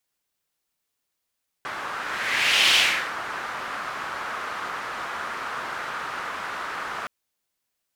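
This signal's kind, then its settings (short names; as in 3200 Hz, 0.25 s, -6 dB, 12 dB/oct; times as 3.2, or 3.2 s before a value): whoosh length 5.42 s, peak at 1.09, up 0.84 s, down 0.42 s, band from 1300 Hz, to 3000 Hz, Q 2.2, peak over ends 14 dB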